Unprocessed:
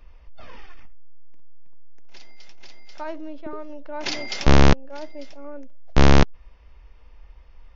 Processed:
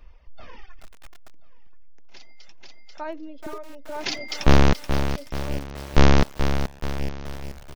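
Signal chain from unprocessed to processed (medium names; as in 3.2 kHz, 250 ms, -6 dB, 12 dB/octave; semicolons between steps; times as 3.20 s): reverb removal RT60 1.6 s; feedback delay 1030 ms, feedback 34%, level -19.5 dB; bit-crushed delay 429 ms, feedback 55%, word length 6-bit, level -8 dB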